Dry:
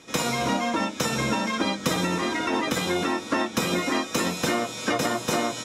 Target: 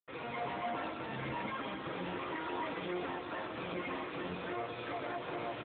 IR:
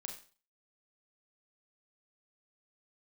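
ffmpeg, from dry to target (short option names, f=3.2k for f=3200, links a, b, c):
-filter_complex "[0:a]asplit=3[a][b][c];[a]afade=t=out:st=1.88:d=0.02[d];[b]highpass=f=92:p=1,afade=t=in:st=1.88:d=0.02,afade=t=out:st=3.02:d=0.02[e];[c]afade=t=in:st=3.02:d=0.02[f];[d][e][f]amix=inputs=3:normalize=0,equalizer=f=220:w=2.8:g=-10.5,alimiter=limit=-21.5dB:level=0:latency=1:release=60,asoftclip=type=tanh:threshold=-30.5dB,adynamicsmooth=sensitivity=5:basefreq=2.1k,flanger=delay=2.1:depth=7.9:regen=-55:speed=0.42:shape=sinusoidal,acrusher=bits=7:mix=0:aa=0.000001,asplit=2[g][h];[h]aecho=0:1:134.1|177.8|271.1:0.355|0.282|0.282[i];[g][i]amix=inputs=2:normalize=0,volume=1.5dB" -ar 8000 -c:a libopencore_amrnb -b:a 7950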